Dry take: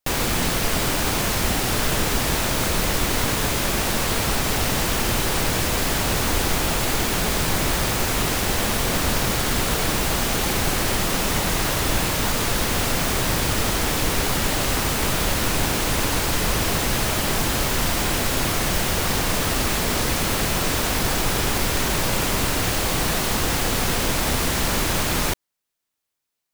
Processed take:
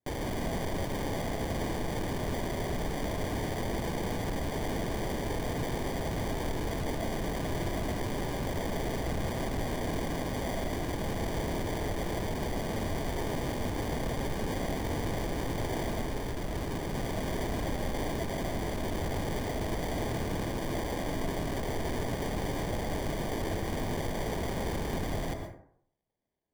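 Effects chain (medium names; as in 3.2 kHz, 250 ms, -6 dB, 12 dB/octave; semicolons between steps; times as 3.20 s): saturation -21 dBFS, distortion -12 dB; 16.02–16.95 s: brick-wall FIR low-pass 3.1 kHz; sample-and-hold 33×; plate-style reverb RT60 0.62 s, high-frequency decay 0.45×, pre-delay 100 ms, DRR 5 dB; trim -8.5 dB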